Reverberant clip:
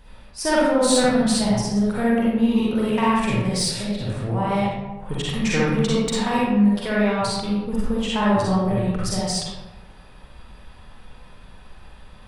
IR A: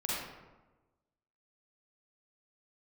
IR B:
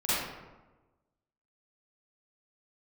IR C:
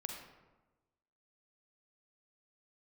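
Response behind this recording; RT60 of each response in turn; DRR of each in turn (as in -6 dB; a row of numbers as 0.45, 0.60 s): A; 1.2, 1.2, 1.2 s; -7.0, -13.5, 2.0 dB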